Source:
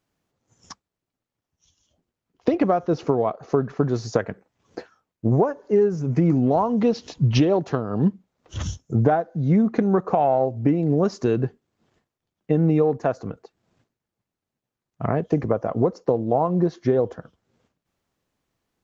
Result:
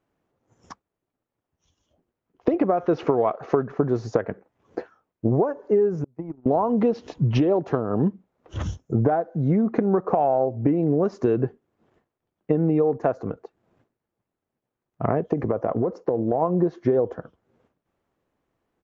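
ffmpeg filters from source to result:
ffmpeg -i in.wav -filter_complex "[0:a]asplit=3[link_01][link_02][link_03];[link_01]afade=type=out:start_time=2.77:duration=0.02[link_04];[link_02]equalizer=frequency=2500:width=0.49:gain=9.5,afade=type=in:start_time=2.77:duration=0.02,afade=type=out:start_time=3.62:duration=0.02[link_05];[link_03]afade=type=in:start_time=3.62:duration=0.02[link_06];[link_04][link_05][link_06]amix=inputs=3:normalize=0,asettb=1/sr,asplit=3[link_07][link_08][link_09];[link_07]atrim=end=6.044[link_10];[link_08]atrim=start=6.04:end=6.46,asetpts=PTS-STARTPTS,afade=type=in:duration=0.004:curve=qsin,afade=type=out:start_time=0.416:duration=0.004:curve=qsin,agate=range=-39dB:threshold=-15dB:ratio=16:release=100:detection=peak[link_11];[link_09]atrim=start=6.456[link_12];[link_10][link_11]acrossfade=duration=0.004:curve1=hsin:curve2=qsin[link_13];[link_13][link_12]acrossfade=duration=0.004:curve1=qsin:curve2=hsin,asplit=3[link_14][link_15][link_16];[link_14]afade=type=out:start_time=15.32:duration=0.02[link_17];[link_15]acompressor=threshold=-20dB:ratio=6:attack=3.2:release=140:knee=1:detection=peak,afade=type=in:start_time=15.32:duration=0.02,afade=type=out:start_time=16.41:duration=0.02[link_18];[link_16]afade=type=in:start_time=16.41:duration=0.02[link_19];[link_17][link_18][link_19]amix=inputs=3:normalize=0,firequalizer=gain_entry='entry(170,0);entry(350,5);entry(4500,-10)':delay=0.05:min_phase=1,acompressor=threshold=-17dB:ratio=4" out.wav

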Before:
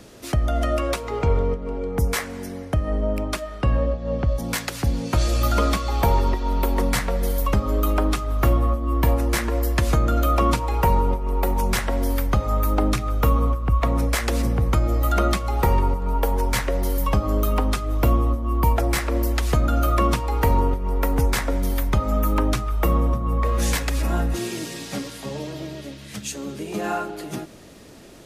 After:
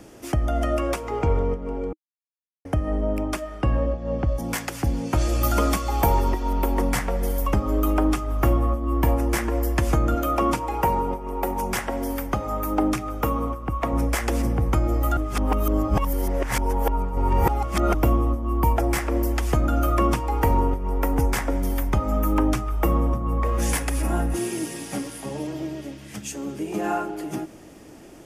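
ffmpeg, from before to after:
ffmpeg -i in.wav -filter_complex "[0:a]asettb=1/sr,asplit=3[link_01][link_02][link_03];[link_01]atrim=end=5.434[link_04];[link_02]atrim=start=5.43:end=6.53,asetpts=PTS-STARTPTS,afade=type=in:duration=0.004:curve=qsin,afade=type=out:start_time=1.096:duration=0.004:curve=qsin,highshelf=frequency=6600:gain=9[link_05];[link_03]atrim=start=6.526[link_06];[link_04][link_05]acrossfade=duration=0.004:curve1=hsin:curve2=qsin[link_07];[link_07][link_06]acrossfade=duration=0.004:curve1=qsin:curve2=hsin,asettb=1/sr,asplit=3[link_08][link_09][link_10];[link_08]atrim=end=10.154[link_11];[link_09]atrim=start=10.15:end=13.93,asetpts=PTS-STARTPTS,afade=type=in:duration=0.004:curve=qsin,afade=type=out:start_time=3.776:duration=0.004:curve=qsin,lowshelf=frequency=90:gain=-11.5[link_12];[link_10]atrim=start=13.926[link_13];[link_11][link_12]acrossfade=duration=0.004:curve1=hsin:curve2=qsin[link_14];[link_14][link_13]acrossfade=duration=0.004:curve1=qsin:curve2=hsin,asettb=1/sr,asplit=3[link_15][link_16][link_17];[link_15]atrim=end=23.694[link_18];[link_16]atrim=start=23.69:end=25.47,asetpts=PTS-STARTPTS,afade=type=in:duration=0.004:curve=qsin,afade=type=out:start_time=1.776:duration=0.004:curve=qsin,equalizer=frequency=10000:width_type=o:width=0.23:gain=11.5[link_19];[link_17]atrim=start=25.466[link_20];[link_18][link_19]acrossfade=duration=0.004:curve1=hsin:curve2=qsin[link_21];[link_21][link_20]acrossfade=duration=0.004:curve1=qsin:curve2=hsin,asplit=5[link_22][link_23][link_24][link_25][link_26];[link_22]atrim=end=1.93,asetpts=PTS-STARTPTS,afade=type=out:start_time=1.926:duration=0.004:curve=hsin[link_27];[link_23]atrim=start=1.93:end=2.65,asetpts=PTS-STARTPTS,volume=0[link_28];[link_24]atrim=start=2.65:end=15.172,asetpts=PTS-STARTPTS,afade=type=in:duration=0.004:curve=hsin[link_29];[link_25]atrim=start=15.168:end=17.942,asetpts=PTS-STARTPTS,areverse[link_30];[link_26]atrim=start=17.938[link_31];[link_27][link_28][link_29]concat=n=3:v=0:a=1[link_32];[link_32][link_30]acrossfade=duration=0.004:curve1=hsin:curve2=hsin[link_33];[link_33][link_31]acrossfade=duration=0.004:curve1=hsin:curve2=hsin,equalizer=frequency=315:width_type=o:width=0.33:gain=7,equalizer=frequency=800:width_type=o:width=0.33:gain=5,equalizer=frequency=4000:width_type=o:width=0.33:gain=-10,volume=-2dB" out.wav

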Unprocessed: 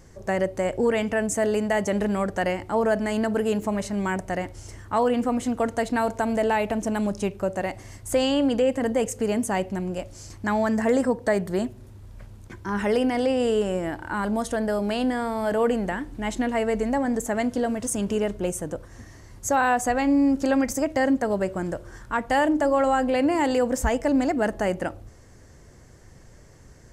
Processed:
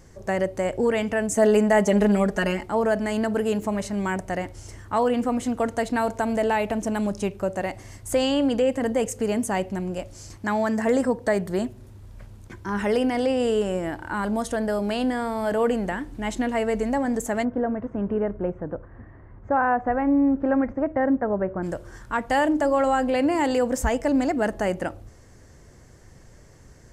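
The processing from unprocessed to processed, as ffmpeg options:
ffmpeg -i in.wav -filter_complex "[0:a]asettb=1/sr,asplit=3[link_01][link_02][link_03];[link_01]atrim=end=1.364[link_04];[link_02]atrim=start=1.36:end=2.66,asetpts=PTS-STARTPTS,afade=type=in:duration=0.004:curve=qsin,afade=type=out:start_time=1.296:duration=0.004:curve=qsin,aecho=1:1:4.8:0.97,atrim=end_sample=57330[link_05];[link_03]atrim=start=2.656[link_06];[link_04][link_05]acrossfade=duration=0.004:curve1=hsin:curve2=qsin[link_07];[link_07][link_06]acrossfade=duration=0.004:curve1=qsin:curve2=hsin,asettb=1/sr,asplit=3[link_08][link_09][link_10];[link_08]atrim=end=10.374[link_11];[link_09]atrim=start=10.37:end=10.87,asetpts=PTS-STARTPTS,afade=type=in:duration=0.004:curve=qsin,afade=type=out:start_time=0.496:duration=0.004:curve=qsin,highpass=frequency=120:poles=1[link_12];[link_10]atrim=start=10.866[link_13];[link_11][link_12]acrossfade=duration=0.004:curve1=hsin:curve2=qsin[link_14];[link_14][link_13]acrossfade=duration=0.004:curve1=qsin:curve2=hsin,asplit=3[link_15][link_16][link_17];[link_15]afade=type=out:start_time=17.43:duration=0.02[link_18];[link_16]lowpass=frequency=1700:width=0.5412,lowpass=frequency=1700:width=1.3066,afade=type=in:start_time=17.43:duration=0.02,afade=type=out:start_time=21.62:duration=0.02[link_19];[link_17]afade=type=in:start_time=21.62:duration=0.02[link_20];[link_18][link_19][link_20]amix=inputs=3:normalize=0" out.wav

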